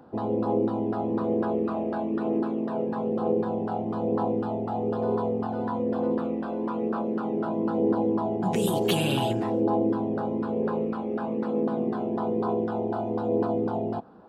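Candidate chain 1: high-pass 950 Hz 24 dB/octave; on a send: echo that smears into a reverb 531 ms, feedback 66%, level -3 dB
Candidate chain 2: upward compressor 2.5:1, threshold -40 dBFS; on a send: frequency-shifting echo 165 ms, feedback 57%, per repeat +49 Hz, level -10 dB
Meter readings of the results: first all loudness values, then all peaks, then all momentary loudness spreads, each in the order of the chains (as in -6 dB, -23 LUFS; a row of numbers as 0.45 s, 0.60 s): -37.5 LUFS, -27.0 LUFS; -14.5 dBFS, -10.0 dBFS; 9 LU, 5 LU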